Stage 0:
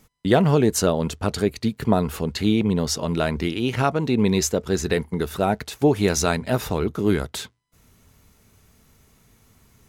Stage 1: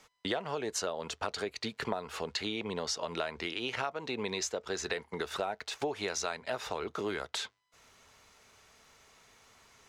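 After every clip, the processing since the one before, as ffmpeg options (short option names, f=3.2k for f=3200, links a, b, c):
-filter_complex "[0:a]acrossover=split=470 7500:gain=0.112 1 0.1[a][b][c];[a][b][c]amix=inputs=3:normalize=0,acompressor=threshold=-35dB:ratio=6,volume=3dB"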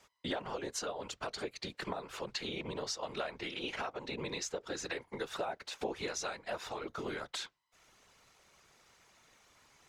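-af "afftfilt=real='hypot(re,im)*cos(2*PI*random(0))':imag='hypot(re,im)*sin(2*PI*random(1))':win_size=512:overlap=0.75,volume=2dB"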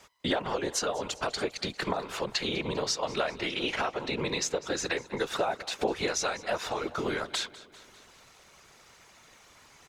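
-af "aecho=1:1:199|398|597|796|995:0.112|0.0662|0.0391|0.023|0.0136,volume=8.5dB"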